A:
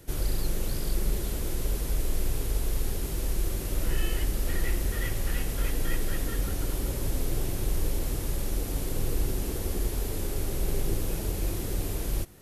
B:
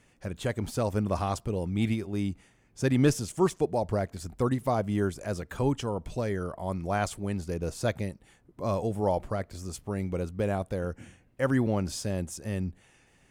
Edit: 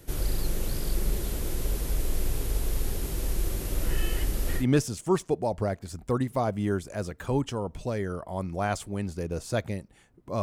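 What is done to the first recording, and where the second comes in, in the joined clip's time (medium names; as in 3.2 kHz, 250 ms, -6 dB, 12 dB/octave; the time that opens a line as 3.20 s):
A
4.61 s: go over to B from 2.92 s, crossfade 0.10 s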